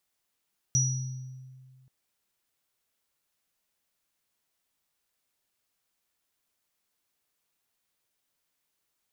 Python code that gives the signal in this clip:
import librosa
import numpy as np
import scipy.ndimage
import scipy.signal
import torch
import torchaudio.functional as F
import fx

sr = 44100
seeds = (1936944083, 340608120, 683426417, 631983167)

y = fx.additive_free(sr, length_s=1.13, hz=130.0, level_db=-23.0, upper_db=(2,), decay_s=2.0, upper_decays_s=(0.77,), upper_hz=(5830.0,))